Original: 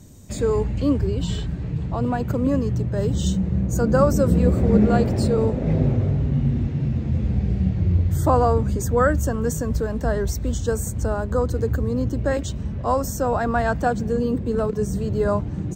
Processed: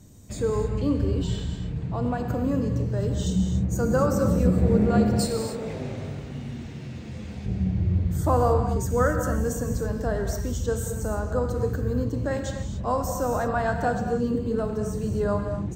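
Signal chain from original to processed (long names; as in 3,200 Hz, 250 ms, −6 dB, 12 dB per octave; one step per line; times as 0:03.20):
0:05.19–0:07.46: spectral tilt +3.5 dB per octave
reverb whose tail is shaped and stops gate 310 ms flat, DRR 4 dB
level −5 dB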